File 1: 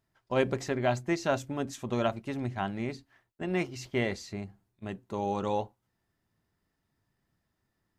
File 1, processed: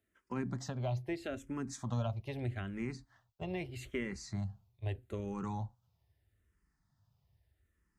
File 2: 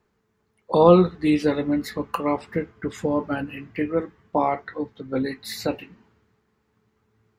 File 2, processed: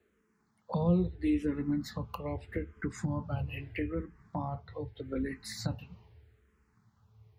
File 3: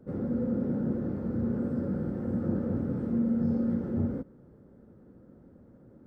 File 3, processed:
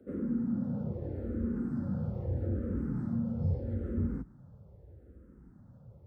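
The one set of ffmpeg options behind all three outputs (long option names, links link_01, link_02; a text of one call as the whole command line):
ffmpeg -i in.wav -filter_complex "[0:a]asubboost=boost=10.5:cutoff=75,highpass=56,equalizer=frequency=200:width=1.5:gain=2,acrossover=split=250[link_01][link_02];[link_02]acompressor=threshold=-36dB:ratio=6[link_03];[link_01][link_03]amix=inputs=2:normalize=0,asplit=2[link_04][link_05];[link_05]afreqshift=-0.79[link_06];[link_04][link_06]amix=inputs=2:normalize=1" out.wav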